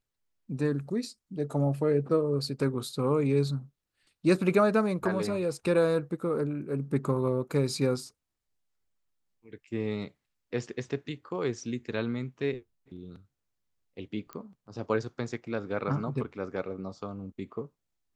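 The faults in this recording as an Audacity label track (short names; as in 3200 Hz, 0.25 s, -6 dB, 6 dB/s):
14.330000	14.330000	pop -25 dBFS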